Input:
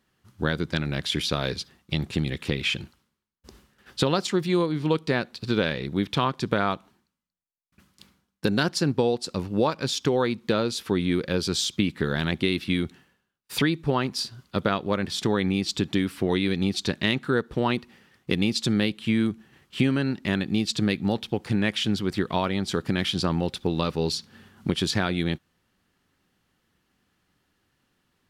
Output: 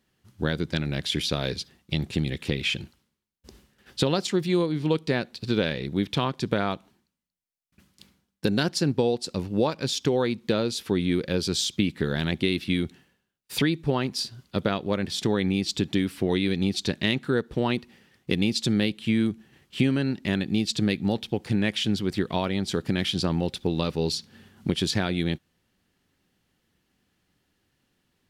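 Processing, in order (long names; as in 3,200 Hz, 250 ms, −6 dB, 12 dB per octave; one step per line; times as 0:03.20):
parametric band 1,200 Hz −5.5 dB 0.95 octaves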